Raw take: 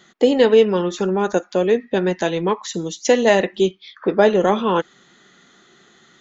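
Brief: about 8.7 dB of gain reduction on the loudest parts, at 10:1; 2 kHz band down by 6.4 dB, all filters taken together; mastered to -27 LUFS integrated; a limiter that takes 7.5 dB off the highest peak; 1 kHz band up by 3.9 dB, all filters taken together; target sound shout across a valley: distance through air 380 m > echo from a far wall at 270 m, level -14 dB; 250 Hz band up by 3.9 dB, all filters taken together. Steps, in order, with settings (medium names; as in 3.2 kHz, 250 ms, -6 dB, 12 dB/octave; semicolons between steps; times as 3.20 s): peaking EQ 250 Hz +5.5 dB; peaking EQ 1 kHz +8 dB; peaking EQ 2 kHz -7 dB; compression 10:1, threshold -14 dBFS; peak limiter -11.5 dBFS; distance through air 380 m; echo from a far wall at 270 m, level -14 dB; trim -4 dB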